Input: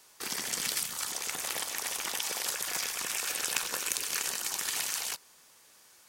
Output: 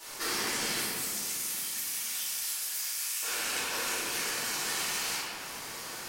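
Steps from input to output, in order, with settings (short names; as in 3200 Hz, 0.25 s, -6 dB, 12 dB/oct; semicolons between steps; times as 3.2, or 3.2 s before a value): 0.79–3.23 differentiator; compressor 10:1, threshold -47 dBFS, peak gain reduction 22.5 dB; reverb RT60 2.9 s, pre-delay 3 ms, DRR -16.5 dB; gain +5 dB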